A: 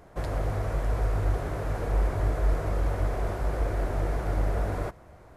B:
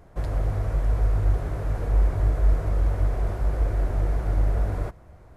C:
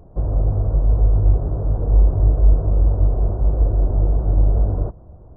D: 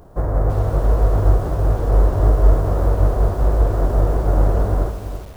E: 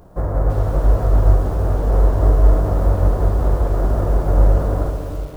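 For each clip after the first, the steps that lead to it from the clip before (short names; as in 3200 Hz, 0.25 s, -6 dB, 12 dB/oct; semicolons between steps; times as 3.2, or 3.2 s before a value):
low shelf 160 Hz +9 dB; gain -3 dB
Gaussian blur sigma 10 samples; gain +7 dB
spectral whitening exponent 0.6; lo-fi delay 0.334 s, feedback 35%, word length 6-bit, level -9.5 dB
reverb RT60 2.8 s, pre-delay 3 ms, DRR 6.5 dB; gain -1 dB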